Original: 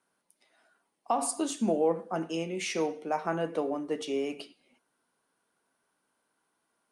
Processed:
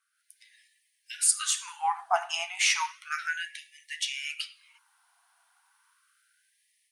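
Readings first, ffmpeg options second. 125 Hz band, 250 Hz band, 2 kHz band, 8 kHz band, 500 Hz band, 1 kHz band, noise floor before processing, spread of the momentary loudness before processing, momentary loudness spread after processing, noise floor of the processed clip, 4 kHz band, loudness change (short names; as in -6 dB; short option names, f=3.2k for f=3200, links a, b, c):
under -40 dB, under -40 dB, +11.0 dB, +10.5 dB, -12.0 dB, +2.5 dB, -79 dBFS, 6 LU, 15 LU, -75 dBFS, +11.0 dB, +2.5 dB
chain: -af "dynaudnorm=f=140:g=3:m=11dB,afftfilt=real='re*gte(b*sr/1024,660*pow(1700/660,0.5+0.5*sin(2*PI*0.33*pts/sr)))':imag='im*gte(b*sr/1024,660*pow(1700/660,0.5+0.5*sin(2*PI*0.33*pts/sr)))':win_size=1024:overlap=0.75"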